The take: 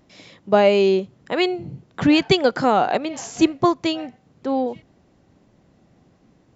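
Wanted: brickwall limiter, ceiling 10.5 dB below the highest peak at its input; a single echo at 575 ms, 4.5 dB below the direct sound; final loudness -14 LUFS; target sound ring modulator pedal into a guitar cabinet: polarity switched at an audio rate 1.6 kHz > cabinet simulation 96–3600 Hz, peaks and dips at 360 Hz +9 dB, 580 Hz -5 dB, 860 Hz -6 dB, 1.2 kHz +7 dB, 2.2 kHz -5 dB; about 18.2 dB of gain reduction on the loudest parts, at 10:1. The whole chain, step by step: compression 10:1, threshold -30 dBFS; peak limiter -27.5 dBFS; delay 575 ms -4.5 dB; polarity switched at an audio rate 1.6 kHz; cabinet simulation 96–3600 Hz, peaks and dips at 360 Hz +9 dB, 580 Hz -5 dB, 860 Hz -6 dB, 1.2 kHz +7 dB, 2.2 kHz -5 dB; trim +21.5 dB

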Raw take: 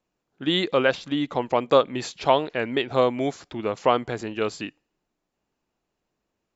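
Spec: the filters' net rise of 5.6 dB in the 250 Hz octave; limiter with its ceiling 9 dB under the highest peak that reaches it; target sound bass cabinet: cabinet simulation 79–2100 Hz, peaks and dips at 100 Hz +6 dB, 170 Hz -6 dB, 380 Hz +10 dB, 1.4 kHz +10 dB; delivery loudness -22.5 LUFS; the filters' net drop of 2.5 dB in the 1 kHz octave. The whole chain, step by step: peaking EQ 250 Hz +4 dB; peaking EQ 1 kHz -6.5 dB; peak limiter -14 dBFS; cabinet simulation 79–2100 Hz, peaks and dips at 100 Hz +6 dB, 170 Hz -6 dB, 380 Hz +10 dB, 1.4 kHz +10 dB; trim +1.5 dB

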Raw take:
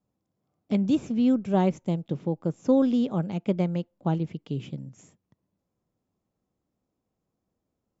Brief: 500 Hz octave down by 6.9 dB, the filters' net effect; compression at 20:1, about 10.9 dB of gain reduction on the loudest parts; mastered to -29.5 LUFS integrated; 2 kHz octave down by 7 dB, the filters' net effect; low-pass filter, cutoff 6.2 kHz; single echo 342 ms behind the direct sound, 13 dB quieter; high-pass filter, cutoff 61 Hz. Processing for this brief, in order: high-pass 61 Hz; low-pass 6.2 kHz; peaking EQ 500 Hz -8 dB; peaking EQ 2 kHz -9 dB; compression 20:1, threshold -31 dBFS; delay 342 ms -13 dB; trim +7.5 dB

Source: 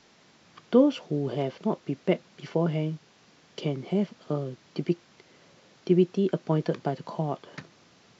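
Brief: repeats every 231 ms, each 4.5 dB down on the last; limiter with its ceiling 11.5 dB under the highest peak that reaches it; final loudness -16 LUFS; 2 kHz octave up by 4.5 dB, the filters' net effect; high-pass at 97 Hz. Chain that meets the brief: high-pass 97 Hz; peaking EQ 2 kHz +5.5 dB; peak limiter -20 dBFS; feedback delay 231 ms, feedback 60%, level -4.5 dB; trim +15.5 dB

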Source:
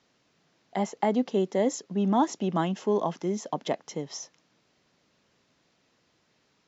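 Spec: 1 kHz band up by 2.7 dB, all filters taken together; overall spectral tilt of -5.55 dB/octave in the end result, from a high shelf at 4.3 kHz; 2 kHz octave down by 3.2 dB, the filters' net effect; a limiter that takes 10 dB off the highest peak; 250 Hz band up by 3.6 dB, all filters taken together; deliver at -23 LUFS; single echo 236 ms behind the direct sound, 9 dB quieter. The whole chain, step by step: peaking EQ 250 Hz +4.5 dB; peaking EQ 1 kHz +4 dB; peaking EQ 2 kHz -6.5 dB; treble shelf 4.3 kHz +6.5 dB; peak limiter -18.5 dBFS; delay 236 ms -9 dB; trim +6 dB

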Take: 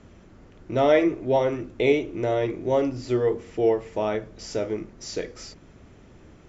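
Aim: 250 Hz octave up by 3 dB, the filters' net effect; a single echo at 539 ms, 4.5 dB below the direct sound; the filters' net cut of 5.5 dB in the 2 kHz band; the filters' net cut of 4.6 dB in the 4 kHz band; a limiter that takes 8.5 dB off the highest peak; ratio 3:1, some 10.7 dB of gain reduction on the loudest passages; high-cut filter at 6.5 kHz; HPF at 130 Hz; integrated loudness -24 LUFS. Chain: high-pass 130 Hz; low-pass 6.5 kHz; peaking EQ 250 Hz +4.5 dB; peaking EQ 2 kHz -5.5 dB; peaking EQ 4 kHz -3.5 dB; compression 3:1, threshold -28 dBFS; peak limiter -23.5 dBFS; delay 539 ms -4.5 dB; trim +9 dB

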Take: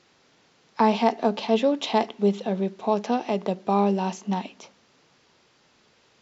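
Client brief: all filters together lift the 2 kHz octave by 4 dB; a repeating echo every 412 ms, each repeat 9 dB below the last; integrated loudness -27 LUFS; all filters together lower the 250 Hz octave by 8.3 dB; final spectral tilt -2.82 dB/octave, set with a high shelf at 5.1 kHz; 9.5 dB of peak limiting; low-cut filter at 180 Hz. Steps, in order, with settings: high-pass 180 Hz; peaking EQ 250 Hz -8.5 dB; peaking EQ 2 kHz +6.5 dB; treble shelf 5.1 kHz -7.5 dB; peak limiter -17.5 dBFS; feedback delay 412 ms, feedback 35%, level -9 dB; trim +2.5 dB

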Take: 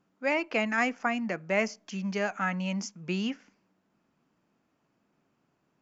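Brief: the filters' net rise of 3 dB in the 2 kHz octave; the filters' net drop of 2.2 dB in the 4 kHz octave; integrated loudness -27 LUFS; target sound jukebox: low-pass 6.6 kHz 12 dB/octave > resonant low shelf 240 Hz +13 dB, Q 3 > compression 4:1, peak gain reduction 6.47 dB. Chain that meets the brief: low-pass 6.6 kHz 12 dB/octave; resonant low shelf 240 Hz +13 dB, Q 3; peaking EQ 2 kHz +5.5 dB; peaking EQ 4 kHz -7 dB; compression 4:1, threshold -20 dBFS; trim -2 dB

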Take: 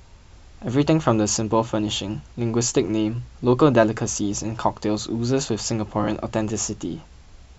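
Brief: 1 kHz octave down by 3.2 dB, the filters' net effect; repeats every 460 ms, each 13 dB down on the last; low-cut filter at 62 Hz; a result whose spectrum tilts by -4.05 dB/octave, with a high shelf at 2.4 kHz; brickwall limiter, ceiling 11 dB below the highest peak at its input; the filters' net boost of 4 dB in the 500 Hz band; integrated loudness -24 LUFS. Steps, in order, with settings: high-pass 62 Hz; peaking EQ 500 Hz +6.5 dB; peaking EQ 1 kHz -8 dB; treble shelf 2.4 kHz +8 dB; peak limiter -11.5 dBFS; feedback delay 460 ms, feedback 22%, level -13 dB; trim -1.5 dB

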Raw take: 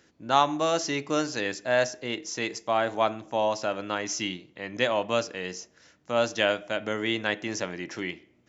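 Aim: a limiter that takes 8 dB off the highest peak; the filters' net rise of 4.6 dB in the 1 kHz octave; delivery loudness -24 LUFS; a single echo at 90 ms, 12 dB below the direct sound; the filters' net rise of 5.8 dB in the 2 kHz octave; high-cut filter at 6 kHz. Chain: low-pass 6 kHz; peaking EQ 1 kHz +4.5 dB; peaking EQ 2 kHz +6 dB; peak limiter -12.5 dBFS; delay 90 ms -12 dB; trim +3 dB

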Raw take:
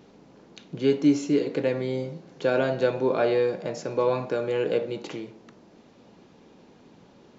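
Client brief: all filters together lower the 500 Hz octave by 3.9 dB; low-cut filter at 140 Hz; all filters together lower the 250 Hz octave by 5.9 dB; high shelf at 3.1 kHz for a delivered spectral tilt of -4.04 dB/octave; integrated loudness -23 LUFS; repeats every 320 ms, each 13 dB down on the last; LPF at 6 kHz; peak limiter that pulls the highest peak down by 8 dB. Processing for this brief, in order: high-pass 140 Hz; low-pass 6 kHz; peaking EQ 250 Hz -6 dB; peaking EQ 500 Hz -3 dB; treble shelf 3.1 kHz +4.5 dB; peak limiter -21 dBFS; feedback delay 320 ms, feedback 22%, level -13 dB; trim +9 dB

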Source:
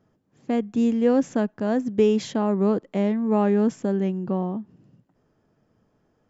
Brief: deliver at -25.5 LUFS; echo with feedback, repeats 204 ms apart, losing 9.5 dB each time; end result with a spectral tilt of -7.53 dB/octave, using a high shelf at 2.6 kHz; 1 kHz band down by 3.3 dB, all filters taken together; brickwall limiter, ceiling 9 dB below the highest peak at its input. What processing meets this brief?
peaking EQ 1 kHz -3.5 dB; treble shelf 2.6 kHz -7.5 dB; peak limiter -18.5 dBFS; feedback delay 204 ms, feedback 33%, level -9.5 dB; trim +0.5 dB

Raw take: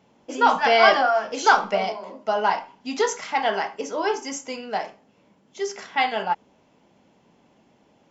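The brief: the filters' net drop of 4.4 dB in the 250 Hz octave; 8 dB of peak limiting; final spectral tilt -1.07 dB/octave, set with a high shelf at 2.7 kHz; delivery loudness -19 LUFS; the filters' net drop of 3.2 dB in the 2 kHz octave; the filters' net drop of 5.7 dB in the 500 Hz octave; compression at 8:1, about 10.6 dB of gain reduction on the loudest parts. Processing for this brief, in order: peaking EQ 250 Hz -3 dB; peaking EQ 500 Hz -7.5 dB; peaking EQ 2 kHz -6 dB; treble shelf 2.7 kHz +5.5 dB; compression 8:1, threshold -24 dBFS; trim +13.5 dB; peak limiter -8 dBFS

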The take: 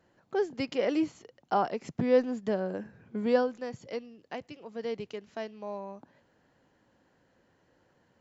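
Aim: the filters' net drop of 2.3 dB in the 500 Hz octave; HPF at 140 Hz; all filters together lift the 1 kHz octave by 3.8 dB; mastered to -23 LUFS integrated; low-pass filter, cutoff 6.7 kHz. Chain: high-pass 140 Hz; low-pass 6.7 kHz; peaking EQ 500 Hz -4 dB; peaking EQ 1 kHz +7 dB; trim +9.5 dB

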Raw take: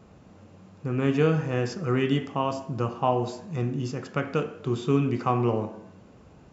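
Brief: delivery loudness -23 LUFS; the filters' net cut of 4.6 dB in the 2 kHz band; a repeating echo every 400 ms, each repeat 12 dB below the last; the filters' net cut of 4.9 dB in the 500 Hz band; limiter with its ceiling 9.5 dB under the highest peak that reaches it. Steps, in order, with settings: peaking EQ 500 Hz -6 dB; peaking EQ 2 kHz -6 dB; peak limiter -22.5 dBFS; feedback delay 400 ms, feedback 25%, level -12 dB; trim +10 dB

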